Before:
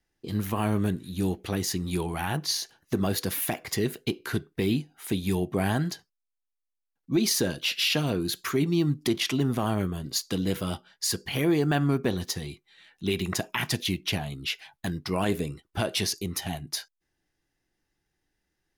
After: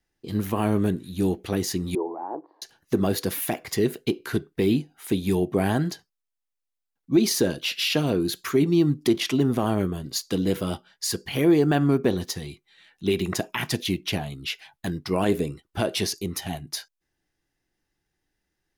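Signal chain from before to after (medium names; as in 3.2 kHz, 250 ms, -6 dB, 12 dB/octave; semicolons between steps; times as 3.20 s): 1.95–2.62 s: elliptic band-pass 300–980 Hz, stop band 80 dB; dynamic bell 380 Hz, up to +6 dB, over -36 dBFS, Q 0.72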